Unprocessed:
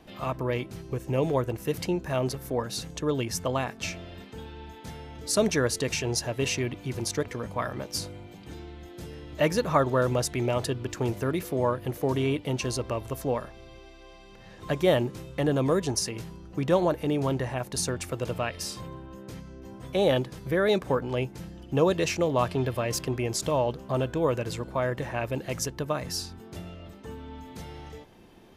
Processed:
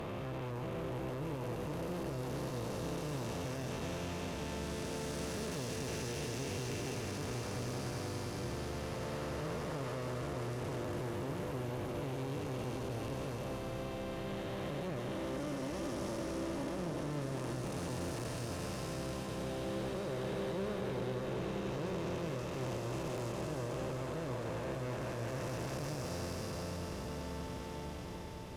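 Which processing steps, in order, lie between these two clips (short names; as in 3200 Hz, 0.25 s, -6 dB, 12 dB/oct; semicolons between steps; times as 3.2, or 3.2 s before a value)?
time blur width 1.23 s; 15.11–16.76 comb 3.4 ms, depth 69%; compressor, threshold -34 dBFS, peak gain reduction 7.5 dB; tube stage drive 41 dB, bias 0.4; swelling echo 97 ms, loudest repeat 8, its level -17 dB; gain +4 dB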